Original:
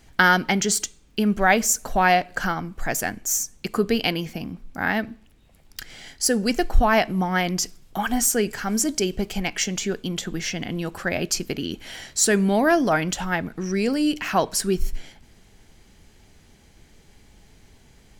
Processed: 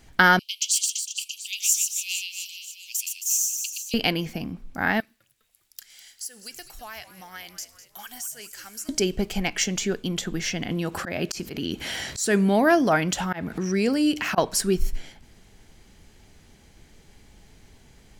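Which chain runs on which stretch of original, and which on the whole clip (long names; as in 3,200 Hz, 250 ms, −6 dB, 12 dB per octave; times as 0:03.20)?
0:00.39–0:03.94: Butterworth high-pass 2,600 Hz 96 dB per octave + reverse bouncing-ball delay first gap 120 ms, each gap 1.25×, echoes 5
0:05.00–0:08.89: first-order pre-emphasis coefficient 0.97 + downward compressor 3 to 1, threshold −35 dBFS + echo with shifted repeats 203 ms, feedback 56%, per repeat −100 Hz, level −14 dB
0:10.71–0:14.38: high-pass filter 52 Hz + volume swells 195 ms + upward compression, threshold −22 dBFS
whole clip: no processing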